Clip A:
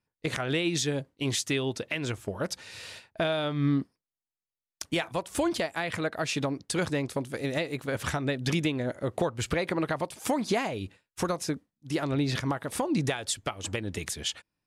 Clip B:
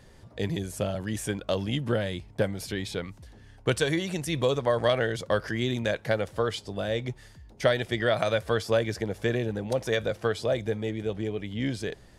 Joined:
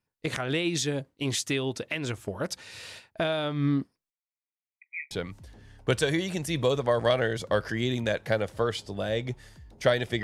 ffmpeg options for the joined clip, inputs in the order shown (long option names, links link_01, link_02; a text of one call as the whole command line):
ffmpeg -i cue0.wav -i cue1.wav -filter_complex "[0:a]asettb=1/sr,asplit=3[link_01][link_02][link_03];[link_01]atrim=end=4.104[link_04];[link_02]atrim=start=4.1:end=5.11,asetpts=PTS-STARTPTS,afade=type=in:duration=0.004:curve=qsin,afade=type=out:start_time=1.006:duration=0.004:curve=qsin,asuperpass=centerf=2200:order=20:qfactor=3.5[link_05];[link_03]atrim=start=5.106[link_06];[link_04][link_05]acrossfade=duration=0.004:curve1=hsin:curve2=qsin[link_07];[link_07][link_06]acrossfade=duration=0.004:curve1=qsin:curve2=hsin,apad=whole_dur=10.23,atrim=end=10.23,atrim=end=5.112[link_08];[1:a]atrim=start=2.898:end=8.02[link_09];[link_08][link_09]acrossfade=duration=0.004:curve1=hsin:curve2=hsin" out.wav